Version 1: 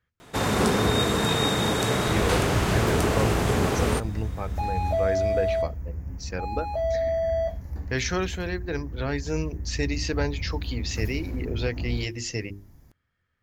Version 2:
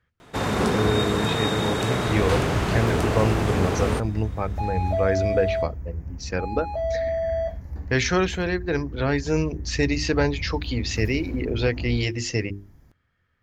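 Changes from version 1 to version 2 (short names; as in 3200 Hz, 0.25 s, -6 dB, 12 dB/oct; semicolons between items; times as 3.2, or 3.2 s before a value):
speech +6.0 dB; master: add high shelf 6200 Hz -8 dB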